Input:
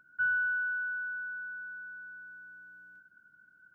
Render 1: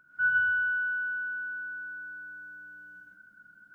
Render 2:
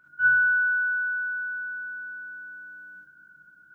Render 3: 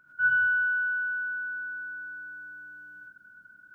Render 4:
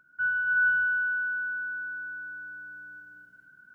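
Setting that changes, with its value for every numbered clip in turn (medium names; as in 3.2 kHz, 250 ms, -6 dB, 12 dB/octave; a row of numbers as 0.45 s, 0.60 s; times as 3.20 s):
gated-style reverb, gate: 200 ms, 90 ms, 130 ms, 520 ms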